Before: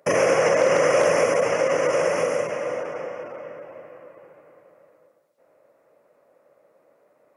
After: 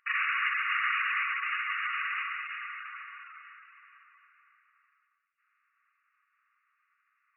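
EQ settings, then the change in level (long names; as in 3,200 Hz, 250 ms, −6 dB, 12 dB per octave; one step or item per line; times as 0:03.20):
linear-phase brick-wall band-pass 1,100–2,900 Hz
tilt shelving filter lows −4.5 dB, about 1,500 Hz
−1.5 dB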